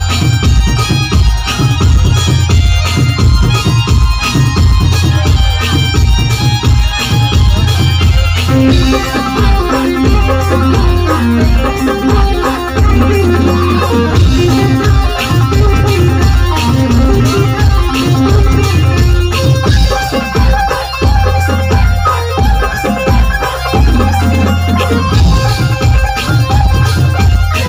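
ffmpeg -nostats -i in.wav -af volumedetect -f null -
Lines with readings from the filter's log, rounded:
mean_volume: -8.7 dB
max_volume: -2.3 dB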